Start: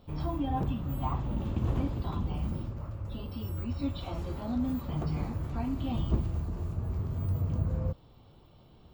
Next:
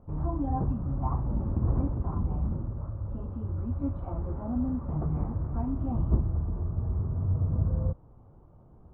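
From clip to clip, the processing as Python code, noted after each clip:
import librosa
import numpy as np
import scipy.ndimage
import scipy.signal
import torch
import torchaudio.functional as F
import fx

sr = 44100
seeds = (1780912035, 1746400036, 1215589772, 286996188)

y = scipy.signal.sosfilt(scipy.signal.butter(4, 1300.0, 'lowpass', fs=sr, output='sos'), x)
y = fx.low_shelf(y, sr, hz=110.0, db=5.5)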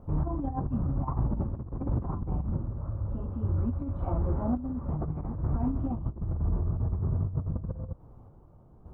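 y = fx.over_compress(x, sr, threshold_db=-30.0, ratio=-0.5)
y = fx.tremolo_random(y, sr, seeds[0], hz=3.5, depth_pct=55)
y = F.gain(torch.from_numpy(y), 3.5).numpy()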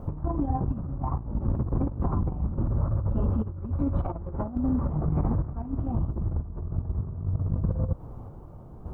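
y = fx.over_compress(x, sr, threshold_db=-33.0, ratio=-0.5)
y = F.gain(torch.from_numpy(y), 6.5).numpy()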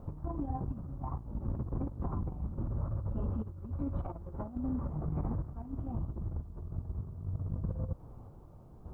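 y = fx.quant_dither(x, sr, seeds[1], bits=12, dither='none')
y = F.gain(torch.from_numpy(y), -9.0).numpy()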